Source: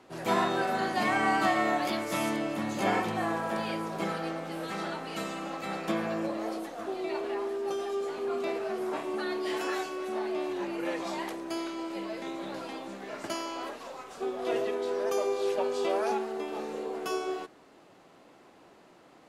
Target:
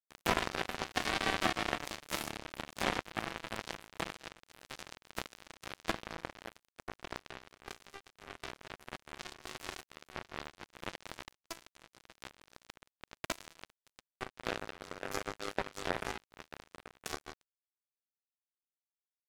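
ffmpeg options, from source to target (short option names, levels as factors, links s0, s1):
-af "acompressor=threshold=0.00251:ratio=2.5,acrusher=bits=5:mix=0:aa=0.5,volume=7.94"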